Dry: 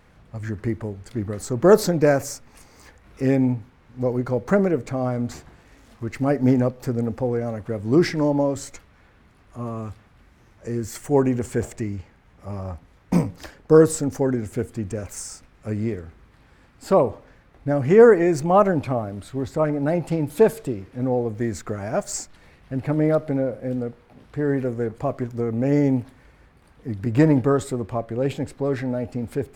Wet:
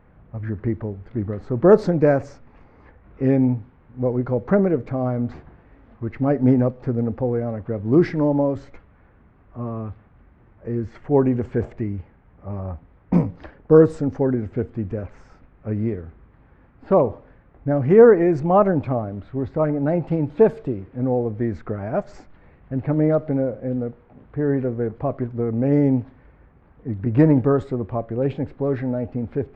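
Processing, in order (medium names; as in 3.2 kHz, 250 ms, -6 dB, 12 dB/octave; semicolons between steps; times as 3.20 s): level-controlled noise filter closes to 2.3 kHz, open at -14 dBFS; tape spacing loss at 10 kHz 33 dB; trim +2.5 dB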